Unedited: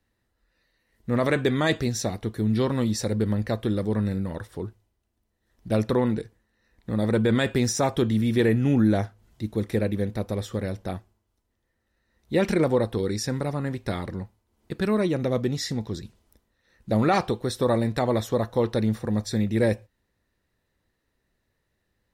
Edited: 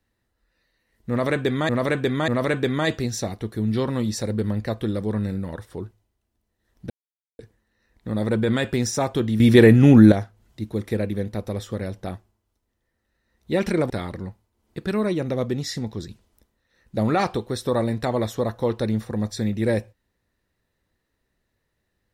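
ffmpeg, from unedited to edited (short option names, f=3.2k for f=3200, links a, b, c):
-filter_complex "[0:a]asplit=8[a][b][c][d][e][f][g][h];[a]atrim=end=1.692[i];[b]atrim=start=1.098:end=1.692[j];[c]atrim=start=1.098:end=5.72,asetpts=PTS-STARTPTS,afade=t=out:st=4.618:d=0.004:c=hsin[k];[d]atrim=start=5.72:end=6.21,asetpts=PTS-STARTPTS,volume=0[l];[e]atrim=start=6.21:end=8.222,asetpts=PTS-STARTPTS,afade=t=in:d=0.004:c=hsin[m];[f]atrim=start=8.218:end=8.942,asetpts=PTS-STARTPTS,volume=9dB[n];[g]atrim=start=8.938:end=12.722[o];[h]atrim=start=13.838[p];[i][j]acrossfade=d=0.004:c1=hsin:c2=hsin[q];[k][l][m]concat=n=3:v=0:a=1[r];[q][r]acrossfade=d=0.004:c1=hsin:c2=hsin[s];[s][n]acrossfade=d=0.004:c1=hsin:c2=hsin[t];[t][o]acrossfade=d=0.004:c1=hsin:c2=hsin[u];[u][p]acrossfade=d=0.004:c1=hsin:c2=hsin"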